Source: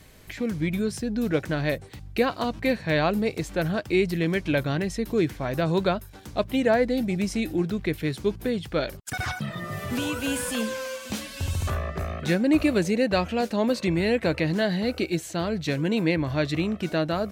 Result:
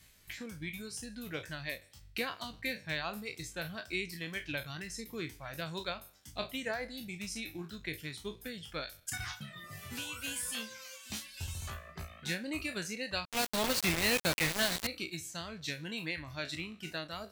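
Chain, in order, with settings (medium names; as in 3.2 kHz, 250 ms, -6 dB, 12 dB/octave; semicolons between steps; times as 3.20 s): spectral sustain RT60 0.61 s; reverb removal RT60 0.97 s; transient shaper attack +3 dB, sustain -1 dB; amplifier tone stack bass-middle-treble 5-5-5; 13.25–14.87 s: companded quantiser 2-bit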